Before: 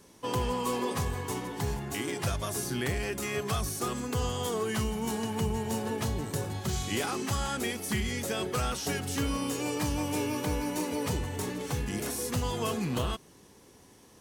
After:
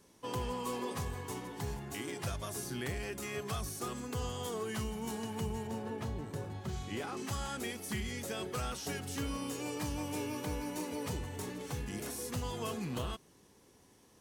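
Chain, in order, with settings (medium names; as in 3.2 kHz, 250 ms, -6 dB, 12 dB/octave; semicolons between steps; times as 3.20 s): 5.67–7.17 s: treble shelf 3.8 kHz -11.5 dB; trim -7 dB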